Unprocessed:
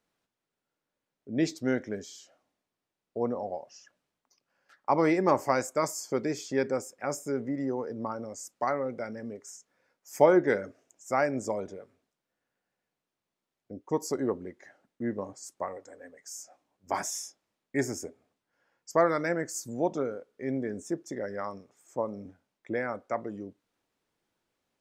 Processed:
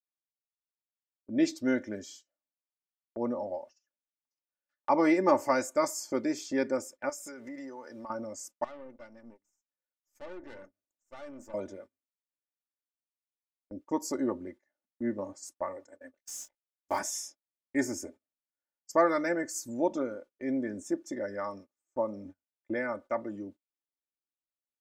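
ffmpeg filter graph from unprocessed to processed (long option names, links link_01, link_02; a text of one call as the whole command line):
ffmpeg -i in.wav -filter_complex "[0:a]asettb=1/sr,asplit=3[link_01][link_02][link_03];[link_01]atrim=end=7.094[link_04];[link_02]atrim=start=7.09:end=8.1,asetpts=PTS-STARTPTS,afade=type=in:duration=0.004:curve=qsin,afade=type=out:start_time=1.006:duration=0.004:curve=qsin,tiltshelf=frequency=640:gain=-9,acompressor=threshold=-39dB:ratio=6:attack=3.2:release=140:knee=1:detection=peak[link_05];[link_03]atrim=start=8.096[link_06];[link_04][link_05]acrossfade=duration=0.004:curve1=hsin:curve2=qsin[link_07];[link_07][link_06]acrossfade=duration=0.004:curve1=qsin:curve2=hsin,asettb=1/sr,asplit=3[link_08][link_09][link_10];[link_08]atrim=end=8.644[link_11];[link_09]atrim=start=8.64:end=11.54,asetpts=PTS-STARTPTS,afade=type=in:duration=0.004:curve=qsin,afade=type=out:start_time=2.896:duration=0.004:curve=qsin,bandreject=frequency=50:width_type=h:width=6,bandreject=frequency=100:width_type=h:width=6,bandreject=frequency=150:width_type=h:width=6,bandreject=frequency=200:width_type=h:width=6,bandreject=frequency=250:width_type=h:width=6,bandreject=frequency=300:width_type=h:width=6,acompressor=threshold=-47dB:ratio=2:attack=3.2:release=140:knee=1:detection=peak,aeval=exprs='(tanh(112*val(0)+0.65)-tanh(0.65))/112':channel_layout=same[link_12];[link_10]atrim=start=11.536[link_13];[link_11][link_12]acrossfade=duration=0.004:curve1=hsin:curve2=qsin[link_14];[link_14][link_13]acrossfade=duration=0.004:curve1=qsin:curve2=hsin,asettb=1/sr,asplit=3[link_15][link_16][link_17];[link_15]atrim=end=16.144[link_18];[link_16]atrim=start=16.14:end=16.99,asetpts=PTS-STARTPTS,afade=type=in:duration=0.004:curve=qsin,afade=type=out:start_time=0.846:duration=0.004:curve=qsin,equalizer=frequency=11000:width_type=o:width=0.28:gain=6.5,acrusher=bits=7:mix=0:aa=0.5,asplit=2[link_19][link_20];[link_20]adelay=23,volume=-7.5dB[link_21];[link_19][link_21]amix=inputs=2:normalize=0,atrim=end_sample=37485[link_22];[link_17]atrim=start=16.986[link_23];[link_18][link_22]acrossfade=duration=0.004:curve1=hsin:curve2=qsin[link_24];[link_24][link_23]acrossfade=duration=0.004:curve1=qsin:curve2=hsin,agate=range=-27dB:threshold=-47dB:ratio=16:detection=peak,aecho=1:1:3.4:0.72,volume=-2.5dB" out.wav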